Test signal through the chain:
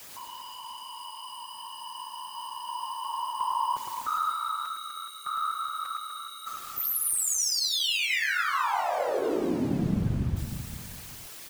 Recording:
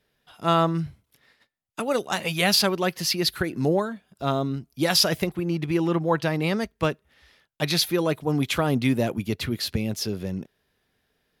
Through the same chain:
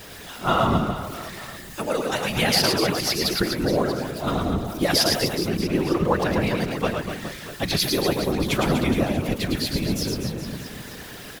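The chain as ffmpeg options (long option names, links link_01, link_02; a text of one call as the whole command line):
ffmpeg -i in.wav -af "aeval=exprs='val(0)+0.5*0.02*sgn(val(0))':channel_layout=same,aecho=1:1:110|247.5|419.4|634.2|902.8:0.631|0.398|0.251|0.158|0.1,afftfilt=real='hypot(re,im)*cos(2*PI*random(0))':imag='hypot(re,im)*sin(2*PI*random(1))':win_size=512:overlap=0.75,volume=4.5dB" out.wav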